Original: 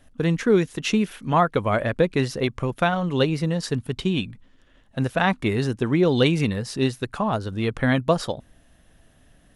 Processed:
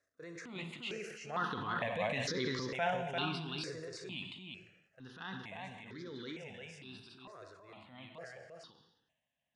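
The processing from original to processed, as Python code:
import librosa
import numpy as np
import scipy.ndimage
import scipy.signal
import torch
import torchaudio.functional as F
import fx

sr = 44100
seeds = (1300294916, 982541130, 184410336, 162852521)

y = fx.doppler_pass(x, sr, speed_mps=7, closest_m=5.7, pass_at_s=2.36)
y = scipy.signal.sosfilt(scipy.signal.butter(4, 7100.0, 'lowpass', fs=sr, output='sos'), y)
y = fx.low_shelf(y, sr, hz=410.0, db=-11.5)
y = y + 10.0 ** (-4.5 / 20.0) * np.pad(y, (int(346 * sr / 1000.0), 0))[:len(y)]
y = fx.rev_gated(y, sr, seeds[0], gate_ms=360, shape='falling', drr_db=9.0)
y = fx.transient(y, sr, attack_db=-7, sustain_db=7)
y = scipy.signal.sosfilt(scipy.signal.bessel(2, 170.0, 'highpass', norm='mag', fs=sr, output='sos'), y)
y = fx.peak_eq(y, sr, hz=1200.0, db=-4.5, octaves=1.4)
y = fx.phaser_held(y, sr, hz=2.2, low_hz=830.0, high_hz=2700.0)
y = F.gain(torch.from_numpy(y), -3.0).numpy()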